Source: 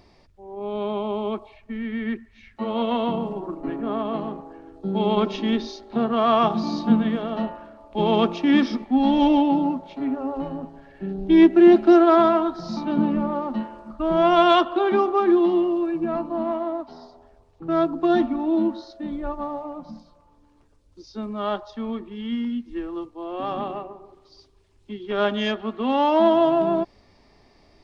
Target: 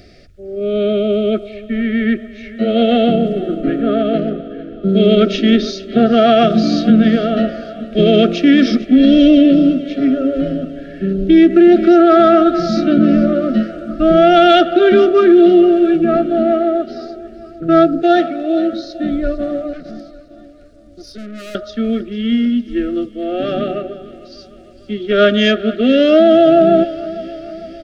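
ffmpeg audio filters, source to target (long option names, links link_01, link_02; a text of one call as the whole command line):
ffmpeg -i in.wav -filter_complex "[0:a]asettb=1/sr,asplit=3[link_01][link_02][link_03];[link_01]atrim=end=4.184[link_04];[link_02]atrim=start=4.18:end=4.89,asetpts=PTS-STARTPTS,afade=type=in:duration=0.004:curve=qsin,afade=type=out:start_time=0.706:duration=0.004:curve=qsin,adynamicsmooth=sensitivity=4:basefreq=3200[link_05];[link_03]atrim=start=4.886[link_06];[link_04][link_05]acrossfade=duration=0.004:curve1=hsin:curve2=qsin[link_07];[link_07][link_06]acrossfade=duration=0.004:curve1=qsin:curve2=hsin,asettb=1/sr,asplit=3[link_08][link_09][link_10];[link_08]atrim=end=18.024[link_11];[link_09]atrim=start=18.02:end=18.73,asetpts=PTS-STARTPTS,afade=type=in:duration=0.004:curve=qsin,afade=type=out:start_time=0.706:duration=0.004:curve=qsin,highpass=frequency=390:width=0.5412,highpass=frequency=390:width=1.3066[link_12];[link_10]atrim=start=18.726[link_13];[link_11][link_12]acrossfade=duration=0.004:curve1=hsin:curve2=qsin[link_14];[link_14][link_13]acrossfade=duration=0.004:curve1=qsin:curve2=hsin,asettb=1/sr,asplit=3[link_15][link_16][link_17];[link_15]atrim=end=19.734[link_18];[link_16]atrim=start=19.73:end=21.55,asetpts=PTS-STARTPTS,afade=type=in:duration=0.004:curve=qsin,afade=type=out:start_time=1.816:duration=0.004:curve=qsin,aeval=exprs='(tanh(112*val(0)+0.5)-tanh(0.5))/112':channel_layout=same[link_19];[link_17]atrim=start=21.546[link_20];[link_18][link_19]acrossfade=duration=0.004:curve1=hsin:curve2=qsin[link_21];[link_21][link_20]acrossfade=duration=0.004:curve1=qsin:curve2=hsin,asuperstop=centerf=950:order=20:qfactor=1.9,aecho=1:1:452|904|1356|1808|2260:0.126|0.0705|0.0395|0.0221|0.0124,alimiter=level_in=13dB:limit=-1dB:release=50:level=0:latency=1,volume=-1dB" out.wav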